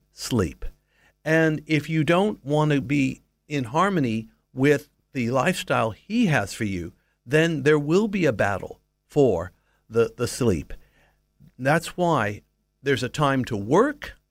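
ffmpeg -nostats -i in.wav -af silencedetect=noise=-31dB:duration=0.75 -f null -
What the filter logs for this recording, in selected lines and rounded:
silence_start: 10.74
silence_end: 11.61 | silence_duration: 0.87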